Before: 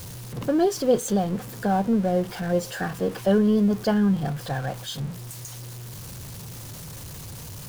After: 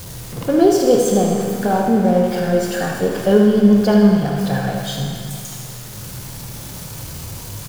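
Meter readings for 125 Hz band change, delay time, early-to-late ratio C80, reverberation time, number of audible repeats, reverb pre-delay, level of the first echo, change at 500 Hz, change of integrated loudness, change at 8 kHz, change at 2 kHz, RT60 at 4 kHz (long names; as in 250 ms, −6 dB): +7.0 dB, 77 ms, 3.0 dB, 2.3 s, 1, 22 ms, −8.0 dB, +8.5 dB, +8.0 dB, +7.5 dB, +7.0 dB, 2.3 s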